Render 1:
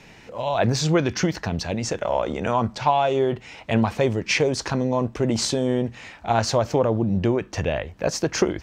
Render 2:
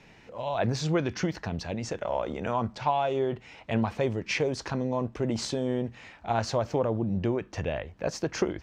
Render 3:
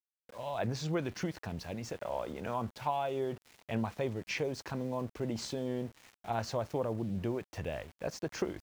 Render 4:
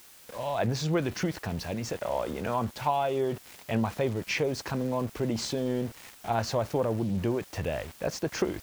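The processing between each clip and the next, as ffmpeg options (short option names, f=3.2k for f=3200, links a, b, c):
-af "highshelf=f=6.4k:g=-8.5,volume=-6.5dB"
-af "aeval=exprs='val(0)*gte(abs(val(0)),0.00708)':c=same,volume=-7dB"
-af "aeval=exprs='val(0)+0.5*0.00473*sgn(val(0))':c=same,volume=5.5dB"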